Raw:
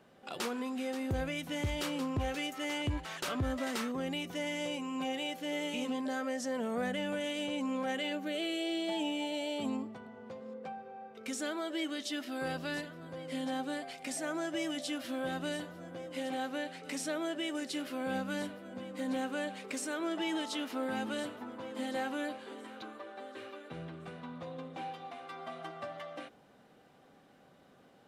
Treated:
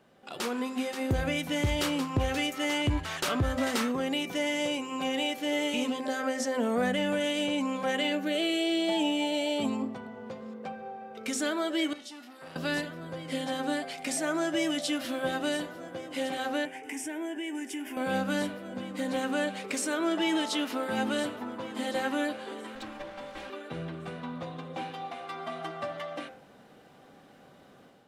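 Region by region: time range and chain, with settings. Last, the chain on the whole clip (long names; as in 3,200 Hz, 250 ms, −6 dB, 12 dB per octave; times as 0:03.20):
0:11.93–0:12.56: tuned comb filter 240 Hz, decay 0.44 s, mix 80% + saturating transformer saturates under 1,200 Hz
0:16.65–0:17.97: phaser with its sweep stopped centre 840 Hz, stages 8 + downward compressor 3 to 1, threshold −40 dBFS
0:22.75–0:23.50: lower of the sound and its delayed copy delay 3.7 ms + high-shelf EQ 11,000 Hz −5.5 dB
whole clip: hum removal 86.84 Hz, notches 31; automatic gain control gain up to 7 dB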